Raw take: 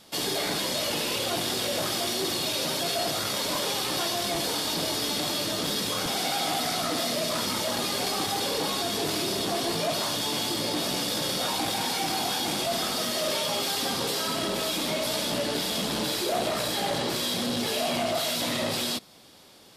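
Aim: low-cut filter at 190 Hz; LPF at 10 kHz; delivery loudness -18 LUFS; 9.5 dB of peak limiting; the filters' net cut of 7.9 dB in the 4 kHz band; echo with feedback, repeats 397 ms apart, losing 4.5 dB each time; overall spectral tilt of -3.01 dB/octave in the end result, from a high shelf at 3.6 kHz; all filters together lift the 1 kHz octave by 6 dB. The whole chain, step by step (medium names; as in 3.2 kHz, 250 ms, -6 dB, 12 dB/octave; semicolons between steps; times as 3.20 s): high-pass 190 Hz; low-pass 10 kHz; peaking EQ 1 kHz +9 dB; treble shelf 3.6 kHz -6.5 dB; peaking EQ 4 kHz -6 dB; peak limiter -23.5 dBFS; feedback delay 397 ms, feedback 60%, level -4.5 dB; trim +12 dB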